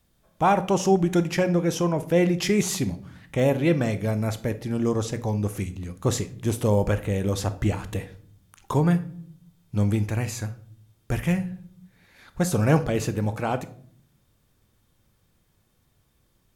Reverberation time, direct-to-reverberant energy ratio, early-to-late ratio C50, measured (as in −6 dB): 0.55 s, 11.0 dB, 15.5 dB